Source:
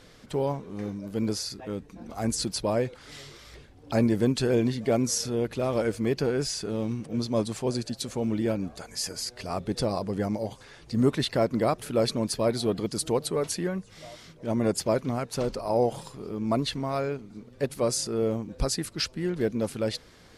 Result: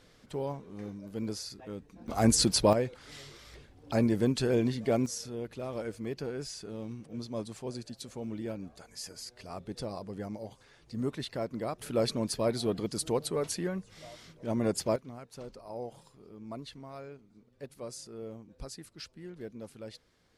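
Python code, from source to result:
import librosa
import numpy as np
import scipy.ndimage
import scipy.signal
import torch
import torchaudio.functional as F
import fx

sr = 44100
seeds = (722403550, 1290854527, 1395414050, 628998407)

y = fx.gain(x, sr, db=fx.steps((0.0, -7.5), (2.08, 4.5), (2.73, -3.5), (5.06, -10.5), (11.81, -4.0), (14.96, -16.0)))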